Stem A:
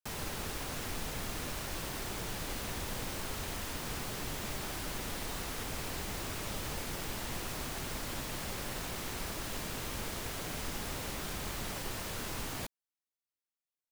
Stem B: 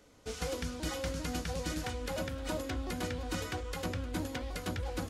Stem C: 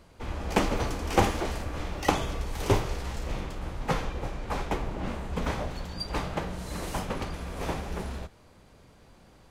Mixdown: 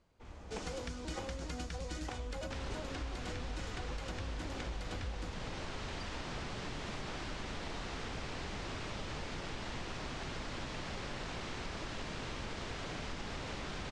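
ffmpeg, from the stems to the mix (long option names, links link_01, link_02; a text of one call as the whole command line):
ffmpeg -i stem1.wav -i stem2.wav -i stem3.wav -filter_complex "[0:a]lowpass=4800,adelay=2450,volume=0.5dB[link_01];[1:a]asubboost=boost=5:cutoff=61,adelay=250,volume=-2dB[link_02];[2:a]volume=-17dB[link_03];[link_01][link_02][link_03]amix=inputs=3:normalize=0,lowpass=frequency=8500:width=0.5412,lowpass=frequency=8500:width=1.3066,acompressor=threshold=-37dB:ratio=6" out.wav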